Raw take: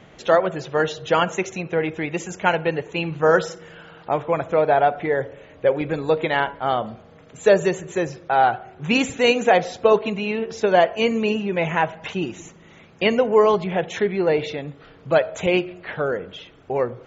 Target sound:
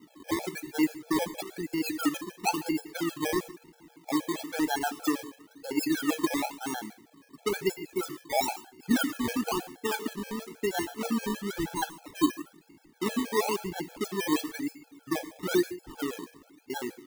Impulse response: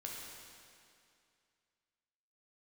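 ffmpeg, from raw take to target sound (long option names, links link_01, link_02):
-filter_complex "[0:a]asplit=3[link_01][link_02][link_03];[link_01]bandpass=frequency=300:width_type=q:width=8,volume=0dB[link_04];[link_02]bandpass=frequency=870:width_type=q:width=8,volume=-6dB[link_05];[link_03]bandpass=frequency=2240:width_type=q:width=8,volume=-9dB[link_06];[link_04][link_05][link_06]amix=inputs=3:normalize=0,equalizer=frequency=280:width_type=o:width=2.4:gain=7,acrusher=samples=25:mix=1:aa=0.000001:lfo=1:lforange=15:lforate=1,asplit=2[link_07][link_08];[1:a]atrim=start_sample=2205,afade=type=out:start_time=0.2:duration=0.01,atrim=end_sample=9261,highshelf=frequency=6900:gain=11[link_09];[link_08][link_09]afir=irnorm=-1:irlink=0,volume=-6.5dB[link_10];[link_07][link_10]amix=inputs=2:normalize=0,afftfilt=real='re*gt(sin(2*PI*6.3*pts/sr)*(1-2*mod(floor(b*sr/1024/440),2)),0)':imag='im*gt(sin(2*PI*6.3*pts/sr)*(1-2*mod(floor(b*sr/1024/440),2)),0)':win_size=1024:overlap=0.75"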